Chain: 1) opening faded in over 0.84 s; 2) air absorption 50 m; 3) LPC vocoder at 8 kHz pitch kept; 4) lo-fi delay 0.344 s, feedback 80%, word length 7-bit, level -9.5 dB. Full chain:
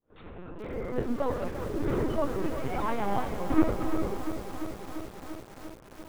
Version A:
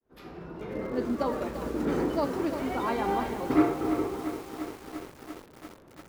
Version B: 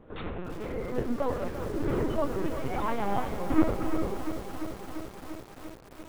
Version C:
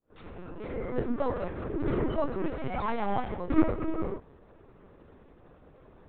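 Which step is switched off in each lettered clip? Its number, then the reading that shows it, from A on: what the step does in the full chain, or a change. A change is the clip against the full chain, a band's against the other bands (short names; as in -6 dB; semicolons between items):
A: 3, 125 Hz band -5.5 dB; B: 1, momentary loudness spread change -2 LU; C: 4, 4 kHz band -3.0 dB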